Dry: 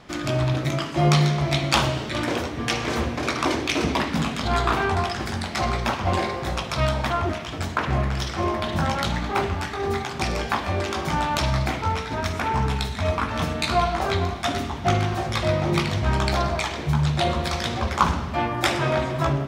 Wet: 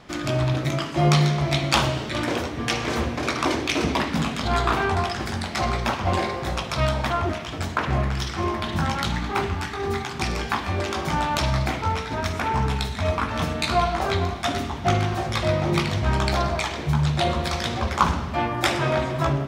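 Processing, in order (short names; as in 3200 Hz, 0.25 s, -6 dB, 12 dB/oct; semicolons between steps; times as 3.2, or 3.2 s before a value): 8.12–10.79 bell 590 Hz -7 dB 0.51 oct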